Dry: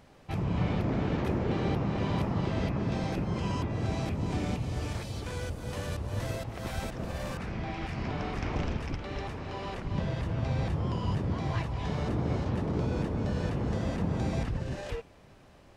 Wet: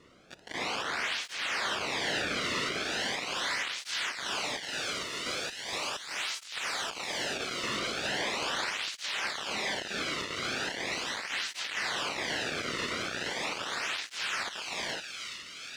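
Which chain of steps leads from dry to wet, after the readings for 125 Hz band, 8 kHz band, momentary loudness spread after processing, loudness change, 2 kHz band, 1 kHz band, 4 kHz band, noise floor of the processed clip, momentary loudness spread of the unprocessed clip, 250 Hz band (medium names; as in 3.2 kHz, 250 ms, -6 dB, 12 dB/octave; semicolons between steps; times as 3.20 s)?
-21.0 dB, +13.0 dB, 4 LU, 0.0 dB, +11.0 dB, +1.5 dB, +14.0 dB, -47 dBFS, 7 LU, -11.0 dB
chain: high-pass 720 Hz 24 dB/octave; treble shelf 4.3 kHz +8 dB; band-stop 4.5 kHz, Q 19; level rider gain up to 11 dB; full-wave rectifier; bit crusher 5-bit; added noise pink -55 dBFS; distance through air 110 m; feedback echo behind a high-pass 422 ms, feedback 70%, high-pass 2.2 kHz, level -3.5 dB; cancelling through-zero flanger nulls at 0.39 Hz, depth 1.3 ms; trim +2 dB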